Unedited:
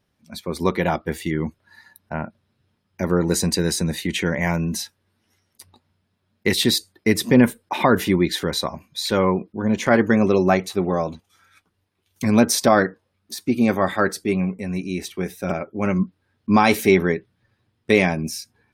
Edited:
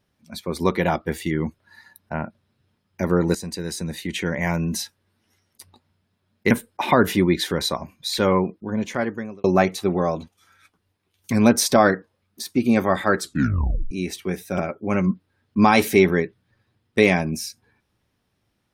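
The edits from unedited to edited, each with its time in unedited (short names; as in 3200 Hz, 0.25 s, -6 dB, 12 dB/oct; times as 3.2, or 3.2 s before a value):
3.35–4.78 fade in, from -13 dB
6.51–7.43 cut
9.27–10.36 fade out
14.1 tape stop 0.73 s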